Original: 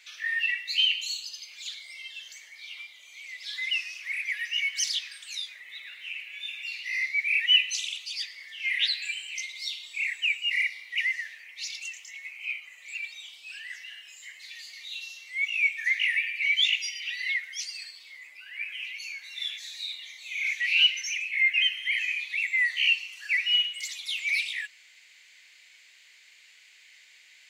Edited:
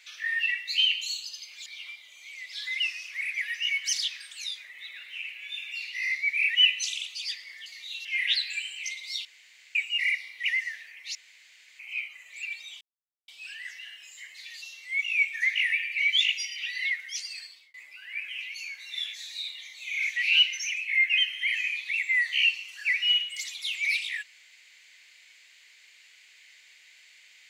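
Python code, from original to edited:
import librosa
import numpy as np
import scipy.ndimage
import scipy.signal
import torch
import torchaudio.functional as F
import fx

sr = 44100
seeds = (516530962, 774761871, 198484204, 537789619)

y = fx.edit(x, sr, fx.cut(start_s=1.66, length_s=0.91),
    fx.room_tone_fill(start_s=9.77, length_s=0.5),
    fx.room_tone_fill(start_s=11.67, length_s=0.64),
    fx.insert_silence(at_s=13.33, length_s=0.47),
    fx.move(start_s=14.67, length_s=0.39, to_s=8.57),
    fx.fade_out_span(start_s=17.89, length_s=0.29), tone=tone)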